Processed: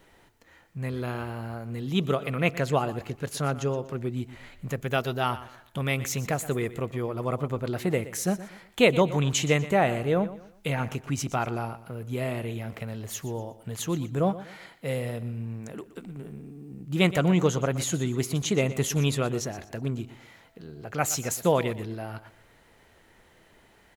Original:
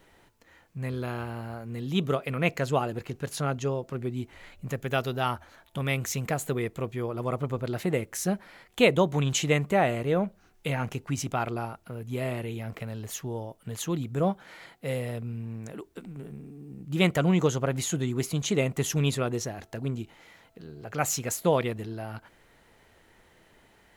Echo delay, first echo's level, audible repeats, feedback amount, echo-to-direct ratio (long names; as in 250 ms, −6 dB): 121 ms, −15.5 dB, 3, 33%, −15.0 dB